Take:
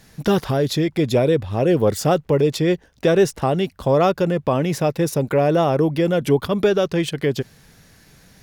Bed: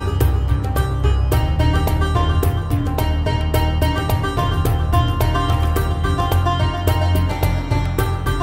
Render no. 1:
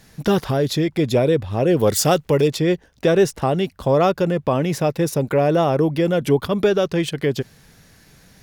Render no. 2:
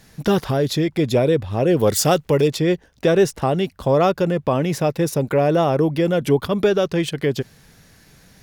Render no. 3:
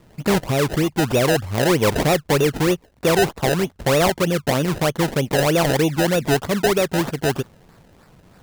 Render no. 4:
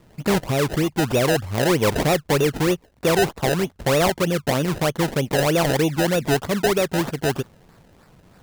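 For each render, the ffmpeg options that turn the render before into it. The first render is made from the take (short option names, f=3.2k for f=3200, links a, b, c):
-filter_complex "[0:a]asettb=1/sr,asplit=3[a][b][c];[a]atrim=end=1.794[d];[b]atrim=start=1.79:end=2.48,asetpts=PTS-STARTPTS,afade=t=in:d=0.004:c=qsin,afade=t=out:st=0.686:d=0.004:c=qsin,highshelf=f=2.3k:g=9.5[e];[c]atrim=start=2.476[f];[d][e]acrossfade=d=0.004:c1=hsin:c2=qsin[g];[g][f]acrossfade=d=0.004:c1=qsin:c2=hsin"
-af anull
-af "acrusher=samples=27:mix=1:aa=0.000001:lfo=1:lforange=27:lforate=3.2,asoftclip=type=hard:threshold=-12dB"
-af "volume=-1.5dB"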